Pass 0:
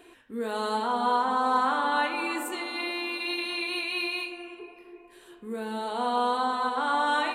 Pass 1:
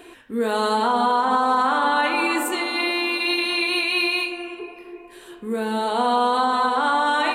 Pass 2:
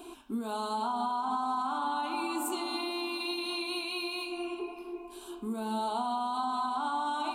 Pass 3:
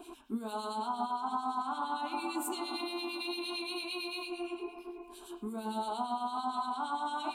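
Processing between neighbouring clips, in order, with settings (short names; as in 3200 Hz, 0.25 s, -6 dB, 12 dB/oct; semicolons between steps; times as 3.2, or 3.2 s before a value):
limiter -20 dBFS, peak gain reduction 8 dB; gain +9 dB
compressor 6:1, threshold -28 dBFS, peak gain reduction 12 dB; fixed phaser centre 500 Hz, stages 6
harmonic tremolo 8.8 Hz, depth 70%, crossover 2000 Hz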